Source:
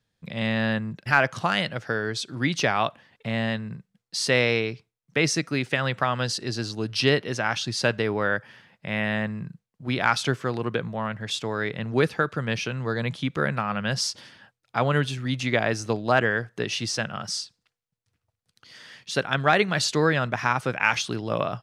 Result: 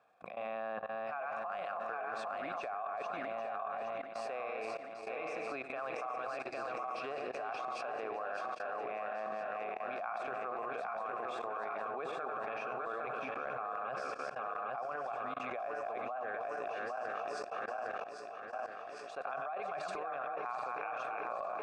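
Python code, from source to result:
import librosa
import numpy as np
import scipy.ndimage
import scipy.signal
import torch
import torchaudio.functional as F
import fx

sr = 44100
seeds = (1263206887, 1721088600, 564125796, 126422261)

y = fx.reverse_delay_fb(x, sr, ms=404, feedback_pct=72, wet_db=-4.0)
y = fx.highpass(y, sr, hz=400.0, slope=6)
y = fx.peak_eq(y, sr, hz=8300.0, db=9.5, octaves=0.53)
y = fx.transient(y, sr, attack_db=1, sustain_db=-5)
y = fx.vowel_filter(y, sr, vowel='a')
y = fx.notch(y, sr, hz=3000.0, q=11.0)
y = fx.echo_feedback(y, sr, ms=90, feedback_pct=41, wet_db=-17)
y = fx.transient(y, sr, attack_db=-1, sustain_db=8)
y = fx.level_steps(y, sr, step_db=23)
y = fx.high_shelf_res(y, sr, hz=2300.0, db=-10.0, q=1.5)
y = fx.env_flatten(y, sr, amount_pct=70)
y = y * 10.0 ** (4.5 / 20.0)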